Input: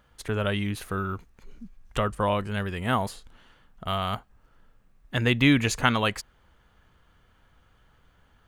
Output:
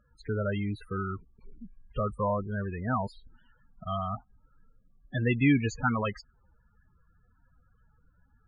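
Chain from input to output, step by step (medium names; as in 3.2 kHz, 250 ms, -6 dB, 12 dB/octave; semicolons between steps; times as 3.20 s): loudest bins only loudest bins 16; treble shelf 8.6 kHz -10.5 dB; trim -2.5 dB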